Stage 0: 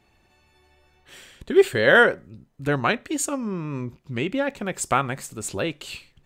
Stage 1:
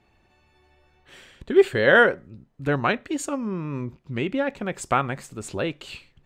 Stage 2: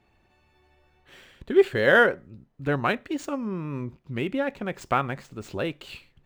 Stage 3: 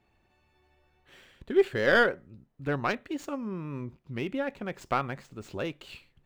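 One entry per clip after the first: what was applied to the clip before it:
low-pass filter 3,400 Hz 6 dB per octave
running median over 5 samples; level −2 dB
stylus tracing distortion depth 0.056 ms; level −4.5 dB

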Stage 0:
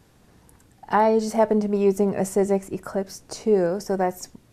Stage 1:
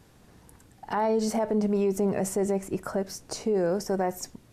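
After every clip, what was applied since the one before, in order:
brickwall limiter −18 dBFS, peak gain reduction 11 dB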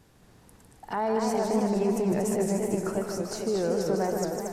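echo with a time of its own for lows and highs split 450 Hz, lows 218 ms, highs 154 ms, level −6 dB
feedback echo with a swinging delay time 230 ms, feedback 56%, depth 194 cents, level −5 dB
level −2.5 dB

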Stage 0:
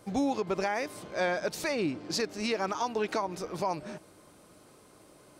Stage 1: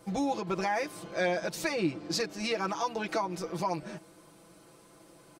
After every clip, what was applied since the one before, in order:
comb filter 6 ms, depth 83%
level −2 dB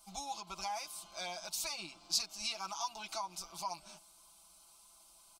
guitar amp tone stack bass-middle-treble 10-0-10
phaser with its sweep stopped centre 480 Hz, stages 6
level +3.5 dB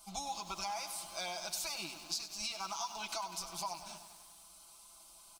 downward compressor, threshold −40 dBFS, peak gain reduction 12 dB
feedback echo at a low word length 98 ms, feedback 80%, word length 10 bits, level −11 dB
level +4 dB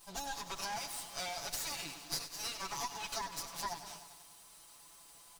lower of the sound and its delayed copy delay 7 ms
level +1.5 dB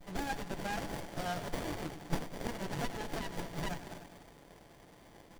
windowed peak hold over 33 samples
level +8 dB

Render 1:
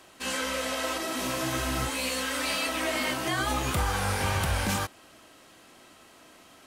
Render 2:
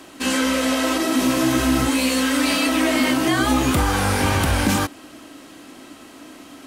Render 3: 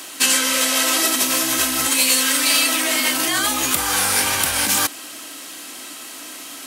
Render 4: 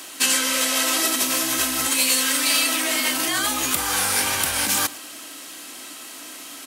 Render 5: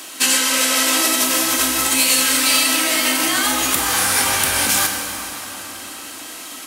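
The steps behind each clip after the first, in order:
parametric band 280 Hz +13 dB 0.52 octaves; in parallel at −0.5 dB: brickwall limiter −21.5 dBFS, peak gain reduction 8 dB; on the sum: level +3 dB
in parallel at +0.5 dB: compressor whose output falls as the input rises −23 dBFS, ratio −0.5; on the sum: spectral tilt +4 dB per octave; level −5.5 dB
single-tap delay 110 ms −20.5 dB; level −3 dB
dense smooth reverb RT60 4.3 s, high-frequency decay 0.65×, DRR 3 dB; level +3 dB

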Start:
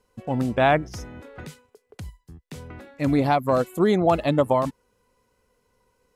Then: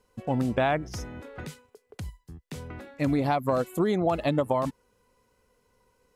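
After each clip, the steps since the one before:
downward compressor, threshold −21 dBFS, peak gain reduction 7.5 dB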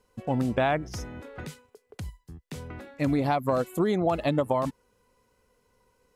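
no processing that can be heard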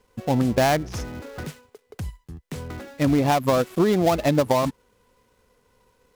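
gap after every zero crossing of 0.13 ms
level +5.5 dB

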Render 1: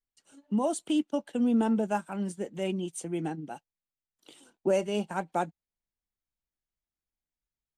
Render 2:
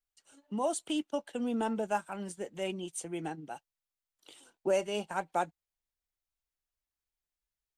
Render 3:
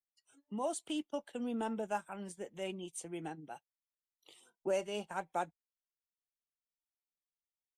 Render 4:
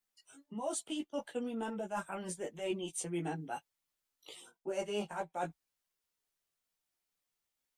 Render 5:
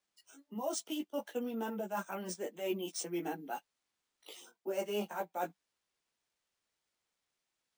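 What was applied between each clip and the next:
parametric band 210 Hz −9 dB 1.7 octaves
noise reduction from a noise print of the clip's start 17 dB; level −5 dB
reversed playback; downward compressor 12 to 1, threshold −43 dBFS, peak gain reduction 14.5 dB; reversed playback; multi-voice chorus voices 4, 0.27 Hz, delay 15 ms, depth 4.3 ms; level +12 dB
elliptic high-pass filter 190 Hz; bad sample-rate conversion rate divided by 3×, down none, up hold; level +1 dB

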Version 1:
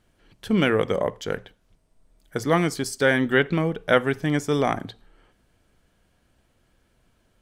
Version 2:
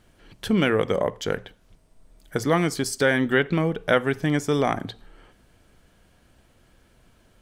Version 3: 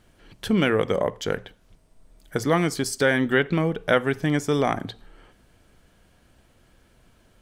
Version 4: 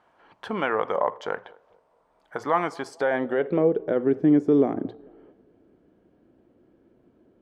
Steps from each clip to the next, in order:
downward compressor 1.5 to 1, threshold −36 dBFS, peak gain reduction 8.5 dB; level +6.5 dB
no processing that can be heard
brickwall limiter −12.5 dBFS, peak gain reduction 7.5 dB; feedback echo with a band-pass in the loop 220 ms, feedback 41%, band-pass 530 Hz, level −23 dB; band-pass filter sweep 940 Hz → 330 Hz, 0:02.83–0:04.03; level +8.5 dB

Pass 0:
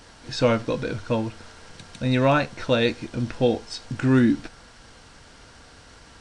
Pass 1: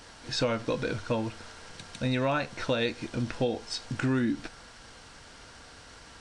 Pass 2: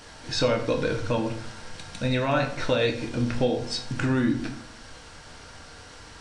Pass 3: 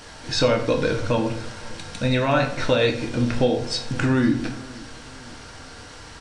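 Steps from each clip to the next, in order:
low-shelf EQ 420 Hz −4 dB; downward compressor 6 to 1, threshold −24 dBFS, peak gain reduction 8.5 dB
rectangular room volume 97 cubic metres, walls mixed, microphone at 0.5 metres; level +2.5 dB
repeating echo 512 ms, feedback 54%, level −22 dB; level +4 dB

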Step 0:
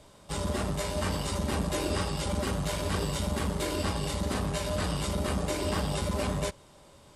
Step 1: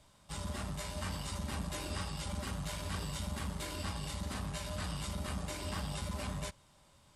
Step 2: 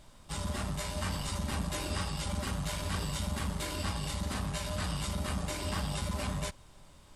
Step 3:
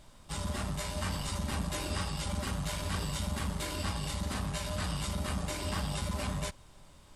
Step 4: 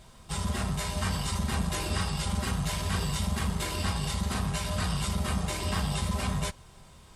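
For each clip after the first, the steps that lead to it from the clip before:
parametric band 420 Hz −10 dB 1.2 octaves; level −7 dB
background noise brown −60 dBFS; level +4.5 dB
no processing that can be heard
notch comb filter 290 Hz; level +5.5 dB

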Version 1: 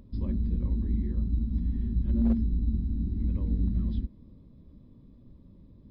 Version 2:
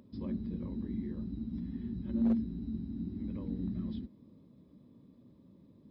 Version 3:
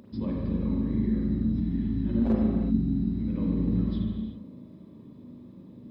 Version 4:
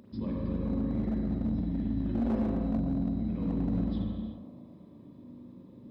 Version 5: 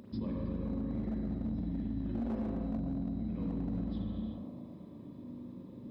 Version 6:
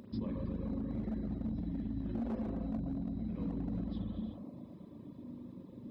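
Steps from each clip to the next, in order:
high-pass filter 170 Hz 12 dB per octave; level −1 dB
parametric band 66 Hz −8 dB 0.28 octaves; convolution reverb, pre-delay 37 ms, DRR −3 dB; level +7 dB
hard clipping −21.5 dBFS, distortion −15 dB; on a send: feedback echo with a band-pass in the loop 115 ms, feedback 76%, band-pass 660 Hz, level −5.5 dB; on the sum: level −3.5 dB
downward compressor 5 to 1, threshold −36 dBFS, peak gain reduction 10 dB; level +2.5 dB
reverb reduction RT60 0.61 s

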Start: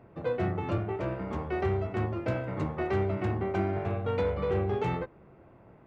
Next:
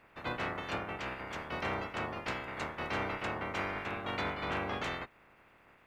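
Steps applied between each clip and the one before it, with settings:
ceiling on every frequency bin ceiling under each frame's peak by 28 dB
level −7 dB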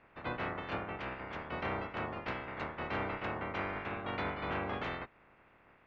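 high-frequency loss of the air 240 metres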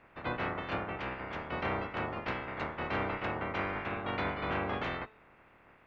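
hum removal 217.6 Hz, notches 37
level +3 dB

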